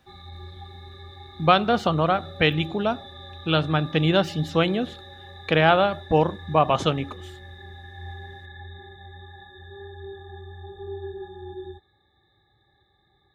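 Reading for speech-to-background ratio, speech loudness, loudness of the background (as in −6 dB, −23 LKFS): 18.5 dB, −22.5 LKFS, −41.0 LKFS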